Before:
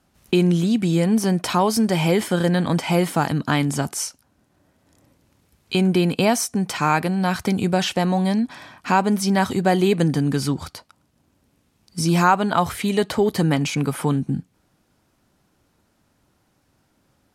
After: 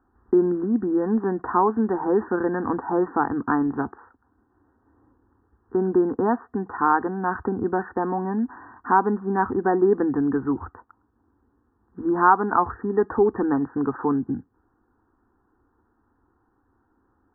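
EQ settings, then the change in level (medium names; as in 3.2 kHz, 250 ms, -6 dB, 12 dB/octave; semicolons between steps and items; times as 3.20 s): brick-wall FIR low-pass 1.9 kHz; static phaser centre 600 Hz, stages 6; +2.0 dB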